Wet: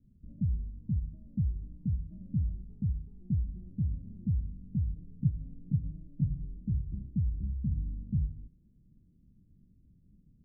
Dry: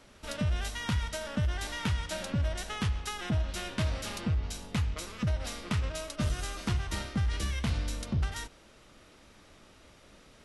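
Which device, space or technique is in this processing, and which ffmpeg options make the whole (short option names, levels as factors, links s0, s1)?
the neighbour's flat through the wall: -filter_complex "[0:a]asettb=1/sr,asplit=3[s0][s1][s2];[s0]atrim=end=4.964[s3];[s1]atrim=start=4.96:end=6.57,asetpts=PTS-STARTPTS,afade=t=in:d=0.004:c=qsin,afade=t=out:st=1.606:d=0.004:c=qsin,aecho=1:1:7:0.72,atrim=end_sample=71001[s4];[s2]atrim=start=6.566[s5];[s3][s4]acrossfade=d=0.004:c1=hsin:c2=qsin[s6];[s6][s5]acrossfade=d=0.004:c1=qsin:c2=hsin,lowpass=f=220:w=0.5412,lowpass=f=220:w=1.3066,equalizer=f=160:t=o:w=0.57:g=5.5,volume=0.841"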